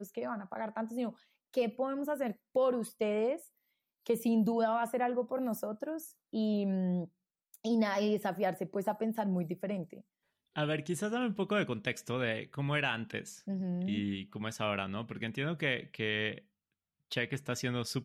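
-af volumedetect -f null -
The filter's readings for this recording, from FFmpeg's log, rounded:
mean_volume: -34.6 dB
max_volume: -17.4 dB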